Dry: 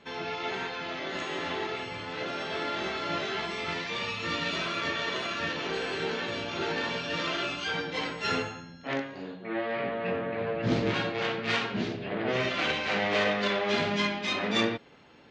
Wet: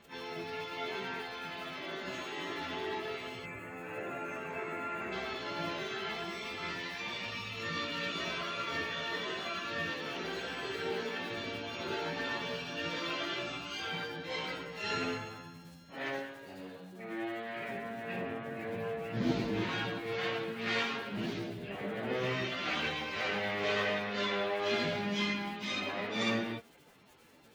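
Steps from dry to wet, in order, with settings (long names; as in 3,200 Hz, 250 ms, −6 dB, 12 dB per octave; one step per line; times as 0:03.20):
surface crackle 100 per second −38 dBFS
time stretch by phase vocoder 1.8×
gain on a spectral selection 0:03.45–0:05.12, 2,800–6,300 Hz −18 dB
level −3 dB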